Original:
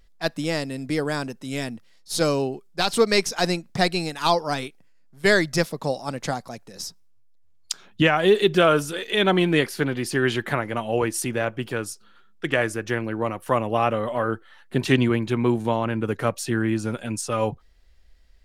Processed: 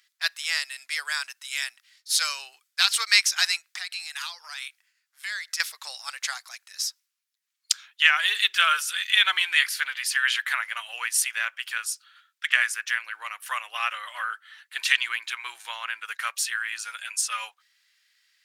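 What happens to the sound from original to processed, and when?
3.78–5.60 s: compression, threshold -30 dBFS
whole clip: high-pass 1.5 kHz 24 dB/octave; trim +5.5 dB

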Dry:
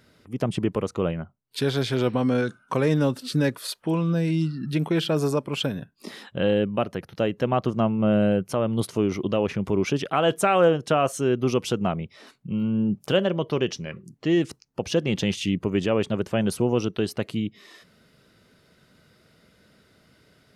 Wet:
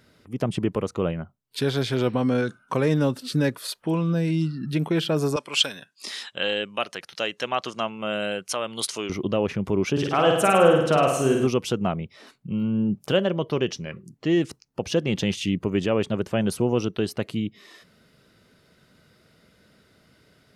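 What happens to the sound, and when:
5.36–9.10 s: frequency weighting ITU-R 468
9.92–11.47 s: flutter echo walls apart 8.9 m, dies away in 0.86 s

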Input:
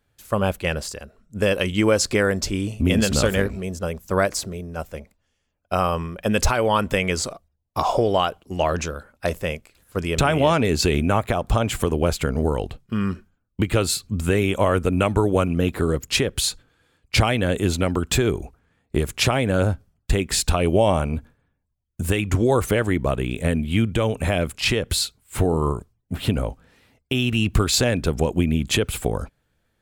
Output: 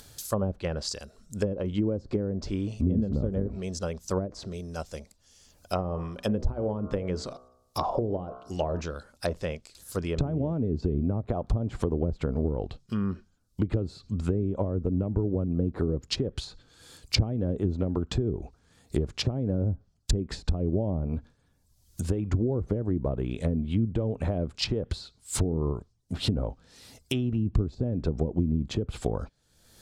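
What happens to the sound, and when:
5.81–8.80 s: de-hum 62.98 Hz, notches 24
whole clip: low-pass that closes with the level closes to 330 Hz, closed at -15.5 dBFS; resonant high shelf 3.4 kHz +11 dB, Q 1.5; upward compressor, threshold -30 dBFS; trim -5 dB

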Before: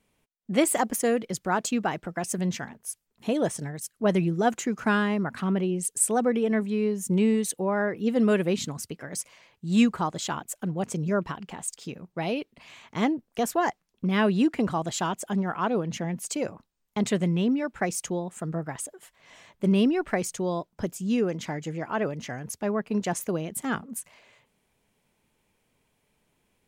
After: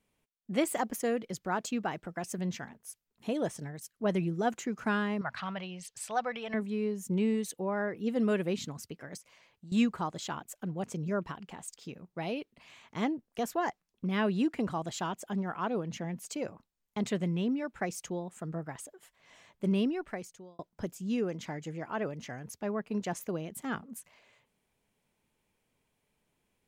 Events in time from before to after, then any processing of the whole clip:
5.21–6.54 s: FFT filter 130 Hz 0 dB, 260 Hz -15 dB, 400 Hz -14 dB, 620 Hz +3 dB, 4.7 kHz +8 dB, 9 kHz -9 dB
9.17–9.72 s: compression 5:1, threshold -40 dBFS
19.75–20.59 s: fade out
whole clip: dynamic bell 9.3 kHz, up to -6 dB, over -49 dBFS, Q 1.5; trim -6.5 dB

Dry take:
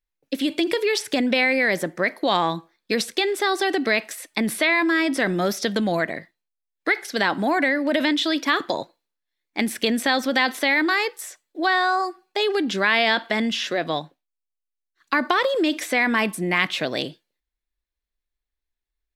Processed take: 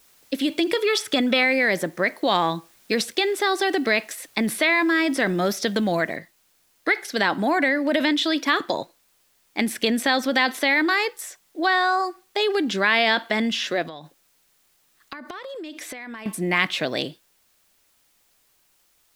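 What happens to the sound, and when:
0.75–1.43 s: small resonant body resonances 1.3/3.4 kHz, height 14 dB
6.16 s: noise floor step -57 dB -64 dB
13.82–16.26 s: compression 16:1, threshold -32 dBFS

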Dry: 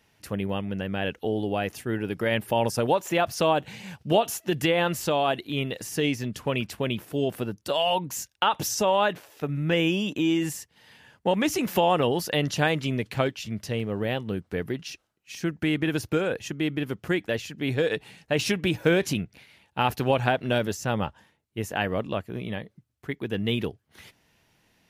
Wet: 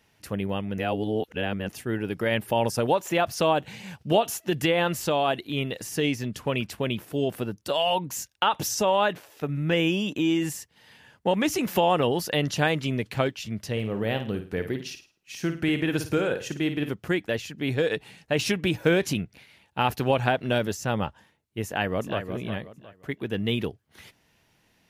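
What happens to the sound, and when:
0.78–1.69 s: reverse
13.71–16.92 s: flutter echo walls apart 9.3 m, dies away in 0.36 s
21.65–22.24 s: echo throw 360 ms, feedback 30%, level -8.5 dB

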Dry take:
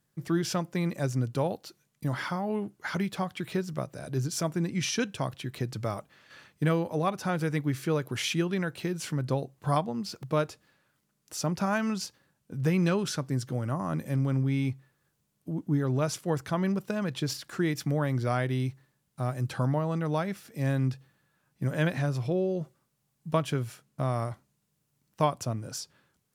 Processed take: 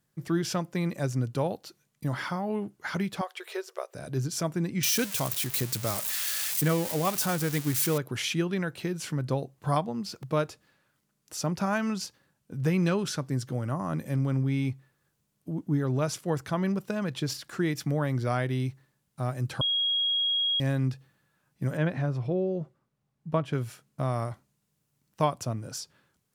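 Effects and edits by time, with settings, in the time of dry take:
3.21–3.95 s: brick-wall FIR high-pass 360 Hz
4.83–7.98 s: zero-crossing glitches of -21 dBFS
19.61–20.60 s: bleep 3.29 kHz -23.5 dBFS
21.77–23.53 s: low-pass 1.6 kHz 6 dB/octave

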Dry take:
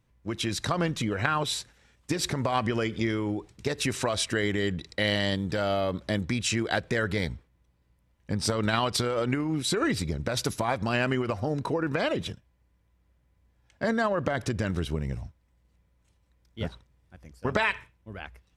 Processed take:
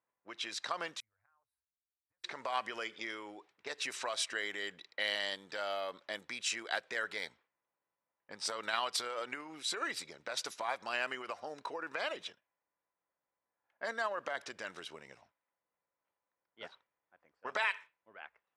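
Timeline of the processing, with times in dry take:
1.00–2.24 s: inverse Chebyshev band-stop 150–7100 Hz
whole clip: level-controlled noise filter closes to 1.3 kHz, open at -23 dBFS; high-pass 750 Hz 12 dB/octave; trim -6 dB

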